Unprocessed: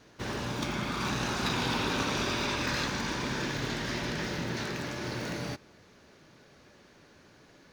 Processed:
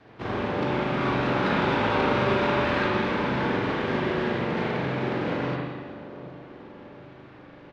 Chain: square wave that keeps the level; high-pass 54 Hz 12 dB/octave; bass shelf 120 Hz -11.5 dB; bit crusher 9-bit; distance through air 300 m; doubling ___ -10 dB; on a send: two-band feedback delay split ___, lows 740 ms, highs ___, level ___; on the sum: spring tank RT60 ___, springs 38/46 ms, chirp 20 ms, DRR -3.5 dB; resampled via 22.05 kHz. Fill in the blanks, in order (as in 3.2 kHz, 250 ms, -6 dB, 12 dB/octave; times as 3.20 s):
36 ms, 1.1 kHz, 192 ms, -14.5 dB, 1.3 s